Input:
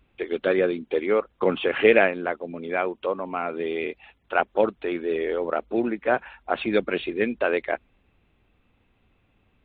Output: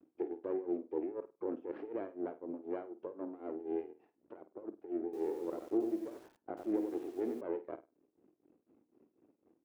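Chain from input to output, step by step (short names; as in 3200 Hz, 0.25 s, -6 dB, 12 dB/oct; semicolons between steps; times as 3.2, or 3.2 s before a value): low shelf 280 Hz +4.5 dB; compressor 1.5:1, threshold -49 dBFS, peak gain reduction 13.5 dB; limiter -24 dBFS, peak gain reduction 8 dB; half-wave rectifier; ladder band-pass 360 Hz, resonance 60%; tremolo 4 Hz, depth 86%; flutter echo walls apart 8.7 m, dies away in 0.25 s; 5.04–7.41 lo-fi delay 92 ms, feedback 35%, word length 12-bit, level -6 dB; gain +14 dB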